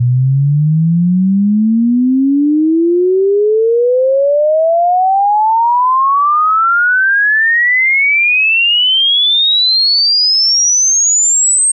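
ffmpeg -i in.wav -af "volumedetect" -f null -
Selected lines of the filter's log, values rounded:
mean_volume: -10.5 dB
max_volume: -7.5 dB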